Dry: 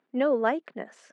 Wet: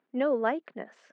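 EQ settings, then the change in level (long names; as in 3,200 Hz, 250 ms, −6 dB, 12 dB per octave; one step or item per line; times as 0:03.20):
low-pass filter 4,400 Hz 12 dB per octave
−2.5 dB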